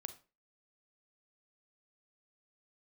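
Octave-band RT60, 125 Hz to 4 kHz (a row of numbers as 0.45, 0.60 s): 0.35, 0.35, 0.35, 0.30, 0.30, 0.25 s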